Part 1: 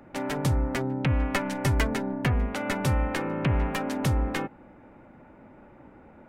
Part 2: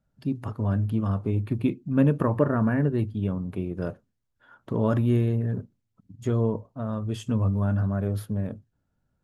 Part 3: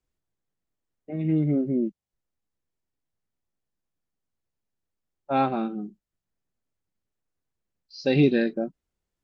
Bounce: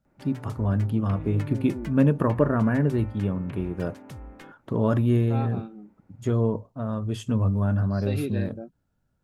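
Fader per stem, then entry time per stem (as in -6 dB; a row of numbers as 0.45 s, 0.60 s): -16.5 dB, +1.0 dB, -11.0 dB; 0.05 s, 0.00 s, 0.00 s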